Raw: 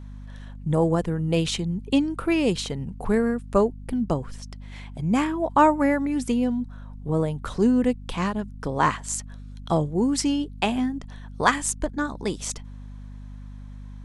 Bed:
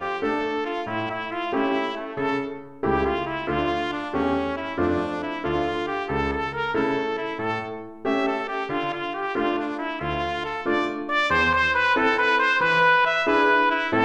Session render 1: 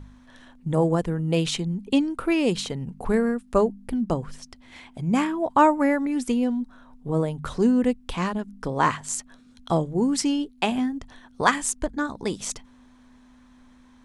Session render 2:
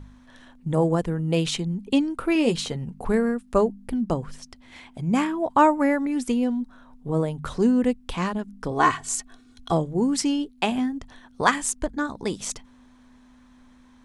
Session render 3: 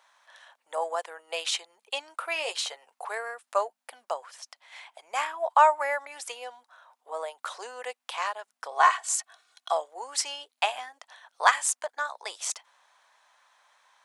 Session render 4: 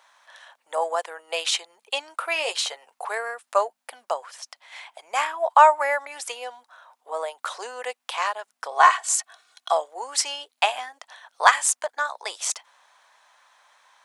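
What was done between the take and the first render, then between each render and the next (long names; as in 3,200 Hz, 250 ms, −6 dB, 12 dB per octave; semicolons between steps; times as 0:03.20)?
hum removal 50 Hz, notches 4
0:02.34–0:02.87: double-tracking delay 13 ms −7.5 dB; 0:08.71–0:09.72: comb filter 2.7 ms, depth 75%
Butterworth high-pass 620 Hz 36 dB per octave
level +5 dB; brickwall limiter −1 dBFS, peak gain reduction 1 dB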